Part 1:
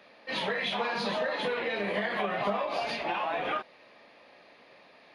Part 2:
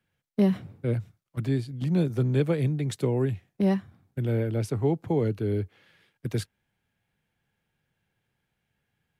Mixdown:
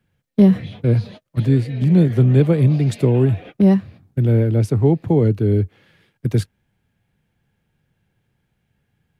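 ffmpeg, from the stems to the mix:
ffmpeg -i stem1.wav -i stem2.wav -filter_complex "[0:a]equalizer=frequency=1000:width=1.4:gain=-12,dynaudnorm=framelen=610:gausssize=7:maxgain=9dB,alimiter=level_in=5dB:limit=-24dB:level=0:latency=1:release=240,volume=-5dB,volume=-4.5dB[link_01];[1:a]acontrast=28,volume=-1.5dB,asplit=2[link_02][link_03];[link_03]apad=whole_len=226990[link_04];[link_01][link_04]sidechaingate=range=-49dB:threshold=-45dB:ratio=16:detection=peak[link_05];[link_05][link_02]amix=inputs=2:normalize=0,lowshelf=frequency=430:gain=9" out.wav

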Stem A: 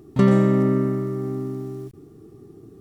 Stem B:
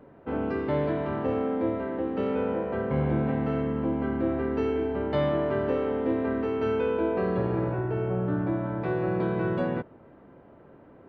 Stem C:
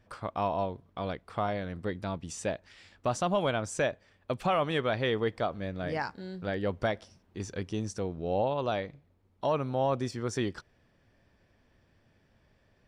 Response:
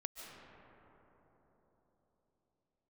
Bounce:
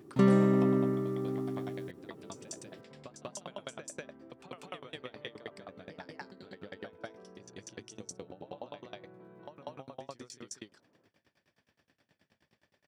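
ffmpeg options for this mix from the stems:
-filter_complex "[0:a]volume=-6.5dB[link_01];[1:a]volume=-19.5dB[link_02];[2:a]highshelf=frequency=2400:gain=11.5,acompressor=threshold=-30dB:ratio=2.5,aeval=exprs='val(0)*pow(10,-37*if(lt(mod(9.5*n/s,1),2*abs(9.5)/1000),1-mod(9.5*n/s,1)/(2*abs(9.5)/1000),(mod(9.5*n/s,1)-2*abs(9.5)/1000)/(1-2*abs(9.5)/1000))/20)':channel_layout=same,volume=2.5dB,asplit=2[link_03][link_04];[link_04]volume=-8dB[link_05];[link_02][link_03]amix=inputs=2:normalize=0,lowpass=frequency=3900:poles=1,acompressor=threshold=-56dB:ratio=2,volume=0dB[link_06];[link_05]aecho=0:1:193:1[link_07];[link_01][link_06][link_07]amix=inputs=3:normalize=0,highpass=140"

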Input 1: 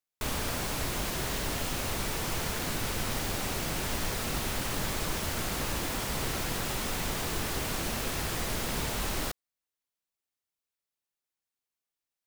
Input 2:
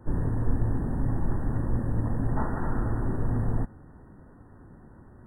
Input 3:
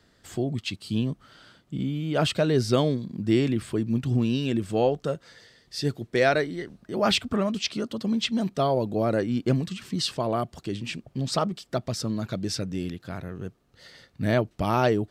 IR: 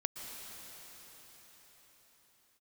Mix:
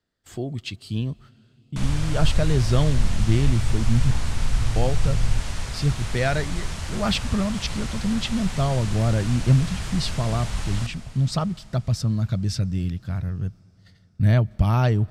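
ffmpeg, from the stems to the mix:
-filter_complex "[0:a]lowpass=frequency=9300:width=0.5412,lowpass=frequency=9300:width=1.3066,lowshelf=frequency=170:gain=-10,adelay=1550,volume=-4.5dB,asplit=2[link_01][link_02];[link_02]volume=-6dB[link_03];[1:a]adelay=1750,volume=-10dB[link_04];[2:a]agate=range=-17dB:threshold=-47dB:ratio=16:detection=peak,deesser=0.4,volume=-2dB,asplit=3[link_05][link_06][link_07];[link_05]atrim=end=4.11,asetpts=PTS-STARTPTS,afade=type=out:start_time=4.106:duration=0.004:curve=hsin[link_08];[link_06]atrim=start=4.11:end=4.76,asetpts=PTS-STARTPTS,volume=0[link_09];[link_07]atrim=start=4.76,asetpts=PTS-STARTPTS,afade=type=in:duration=0.004:curve=hsin[link_10];[link_08][link_09][link_10]concat=n=3:v=0:a=1,asplit=2[link_11][link_12];[link_12]volume=-23.5dB[link_13];[3:a]atrim=start_sample=2205[link_14];[link_03][link_13]amix=inputs=2:normalize=0[link_15];[link_15][link_14]afir=irnorm=-1:irlink=0[link_16];[link_01][link_04][link_11][link_16]amix=inputs=4:normalize=0,asubboost=boost=10:cutoff=110"

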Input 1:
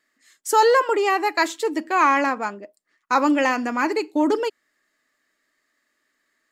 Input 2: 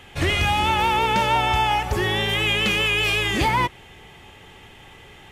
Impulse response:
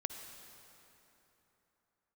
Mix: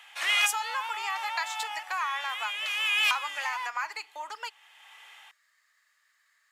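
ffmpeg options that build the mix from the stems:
-filter_complex "[0:a]highpass=frequency=500:poles=1,acompressor=threshold=-29dB:ratio=12,volume=2.5dB,asplit=2[link_01][link_02];[1:a]dynaudnorm=framelen=110:gausssize=7:maxgain=7dB,volume=-4dB[link_03];[link_02]apad=whole_len=234260[link_04];[link_03][link_04]sidechaincompress=threshold=-44dB:ratio=8:attack=41:release=715[link_05];[link_01][link_05]amix=inputs=2:normalize=0,highpass=frequency=880:width=0.5412,highpass=frequency=880:width=1.3066"

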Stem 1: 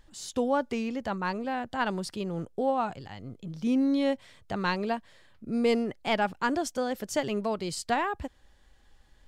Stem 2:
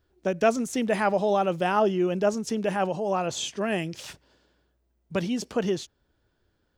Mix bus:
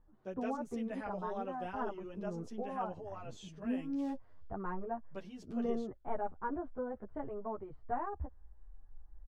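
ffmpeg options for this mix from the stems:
ffmpeg -i stem1.wav -i stem2.wav -filter_complex "[0:a]lowpass=frequency=1300:width=0.5412,lowpass=frequency=1300:width=1.3066,bandreject=frequency=550:width=12,asubboost=boost=8:cutoff=58,volume=-5.5dB[link_01];[1:a]volume=-16dB[link_02];[link_01][link_02]amix=inputs=2:normalize=0,highshelf=frequency=3900:gain=-8.5,asplit=2[link_03][link_04];[link_04]adelay=9.6,afreqshift=-1.6[link_05];[link_03][link_05]amix=inputs=2:normalize=1" out.wav

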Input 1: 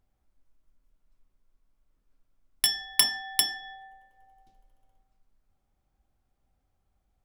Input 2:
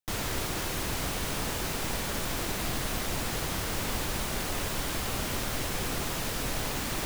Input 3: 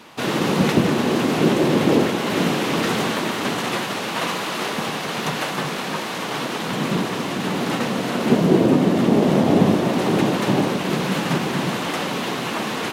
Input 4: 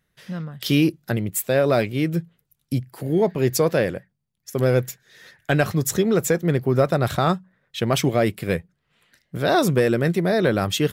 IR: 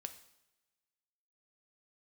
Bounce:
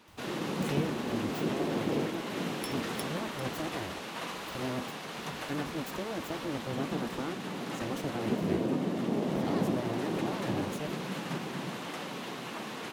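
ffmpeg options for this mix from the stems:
-filter_complex "[0:a]acompressor=threshold=-31dB:ratio=6,volume=-9dB[link_01];[1:a]acrossover=split=140[link_02][link_03];[link_03]acompressor=threshold=-57dB:ratio=2[link_04];[link_02][link_04]amix=inputs=2:normalize=0,tremolo=f=1.1:d=0.9,volume=-16dB[link_05];[2:a]volume=-14.5dB[link_06];[3:a]acrossover=split=210[link_07][link_08];[link_08]acompressor=threshold=-43dB:ratio=2[link_09];[link_07][link_09]amix=inputs=2:normalize=0,aeval=exprs='abs(val(0))':channel_layout=same,volume=-6dB,asplit=2[link_10][link_11];[link_11]apad=whole_len=319423[link_12];[link_01][link_12]sidechaincompress=threshold=-45dB:ratio=8:attack=16:release=151[link_13];[link_13][link_05][link_06][link_10]amix=inputs=4:normalize=0,highpass=67"

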